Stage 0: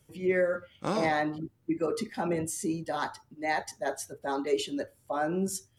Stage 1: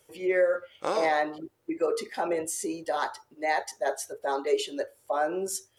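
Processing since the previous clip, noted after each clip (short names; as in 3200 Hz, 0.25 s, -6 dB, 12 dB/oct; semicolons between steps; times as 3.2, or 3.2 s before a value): resonant low shelf 300 Hz -13.5 dB, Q 1.5; in parallel at -2.5 dB: compressor, threshold -38 dBFS, peak gain reduction 16.5 dB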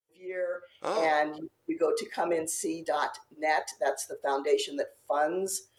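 opening faded in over 1.20 s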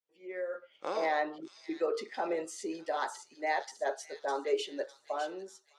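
ending faded out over 0.88 s; three-band isolator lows -23 dB, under 170 Hz, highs -23 dB, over 6900 Hz; thin delay 0.605 s, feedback 38%, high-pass 4100 Hz, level -4.5 dB; gain -4.5 dB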